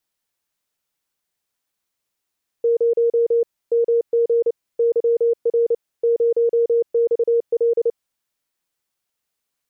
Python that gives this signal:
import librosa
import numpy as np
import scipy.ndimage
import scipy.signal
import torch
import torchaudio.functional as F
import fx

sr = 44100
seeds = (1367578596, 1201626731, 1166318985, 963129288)

y = fx.morse(sr, text='0 MG YR 0XL', wpm=29, hz=467.0, level_db=-13.5)